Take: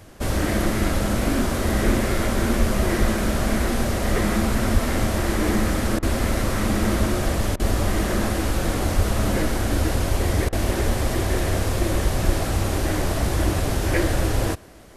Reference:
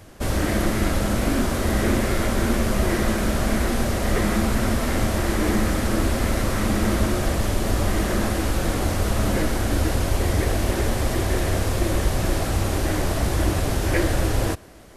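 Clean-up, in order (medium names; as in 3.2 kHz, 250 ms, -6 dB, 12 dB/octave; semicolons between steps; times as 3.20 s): de-plosive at 1.85/2.59/2.99/4.73/7.61/8.95/10.86/12.25 s; interpolate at 5.99/7.56/10.49 s, 35 ms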